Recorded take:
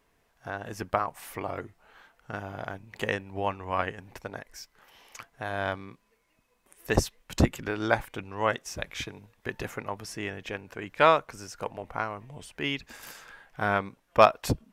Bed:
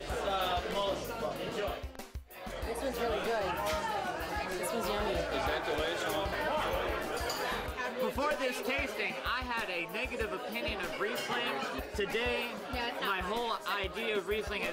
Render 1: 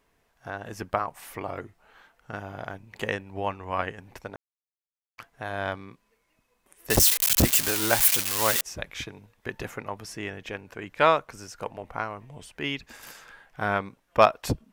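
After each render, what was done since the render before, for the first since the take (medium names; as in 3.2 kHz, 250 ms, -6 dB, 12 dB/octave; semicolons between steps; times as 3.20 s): 4.36–5.18 s: mute; 6.90–8.61 s: zero-crossing glitches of -12 dBFS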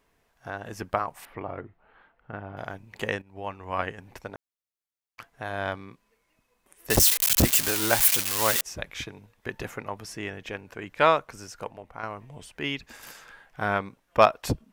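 1.25–2.57 s: distance through air 440 m; 3.22–3.82 s: fade in, from -13 dB; 11.56–12.03 s: fade out quadratic, to -7.5 dB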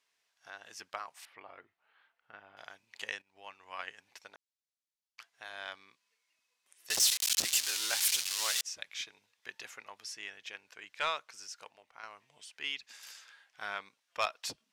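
band-pass filter 4.8 kHz, Q 0.99; saturation -19 dBFS, distortion -18 dB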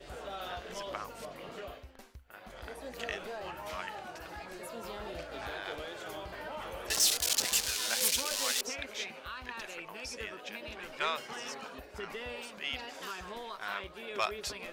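add bed -9 dB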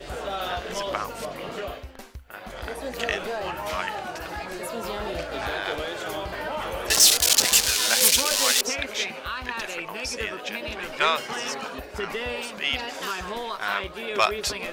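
trim +11 dB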